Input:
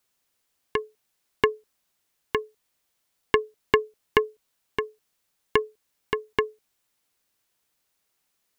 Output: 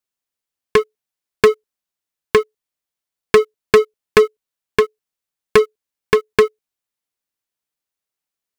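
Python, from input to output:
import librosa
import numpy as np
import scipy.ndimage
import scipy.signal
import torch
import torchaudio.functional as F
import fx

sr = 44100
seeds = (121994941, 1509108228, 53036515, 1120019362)

y = fx.leveller(x, sr, passes=5)
y = y * 10.0 ** (-1.5 / 20.0)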